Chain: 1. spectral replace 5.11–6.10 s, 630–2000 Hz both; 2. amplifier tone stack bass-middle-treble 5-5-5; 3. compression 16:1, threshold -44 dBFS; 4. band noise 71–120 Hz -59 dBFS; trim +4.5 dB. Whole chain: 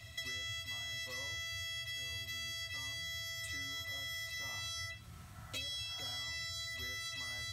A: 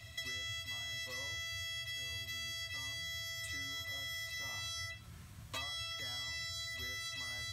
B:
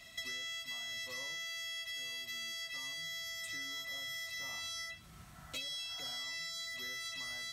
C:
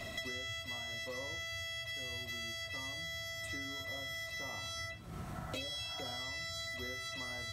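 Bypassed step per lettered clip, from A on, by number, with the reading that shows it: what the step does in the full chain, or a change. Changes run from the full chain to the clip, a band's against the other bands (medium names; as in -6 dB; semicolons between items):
1, crest factor change +2.0 dB; 4, 125 Hz band -11.5 dB; 2, 500 Hz band +9.0 dB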